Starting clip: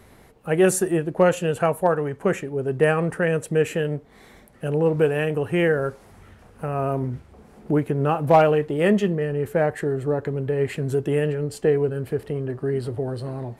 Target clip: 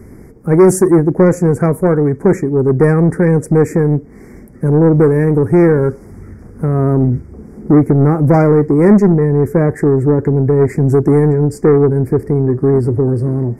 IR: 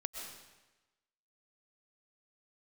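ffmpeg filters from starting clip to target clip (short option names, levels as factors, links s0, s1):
-af "lowshelf=f=480:t=q:w=1.5:g=10.5,acontrast=72,asuperstop=centerf=3300:order=12:qfactor=1.3,volume=0.794"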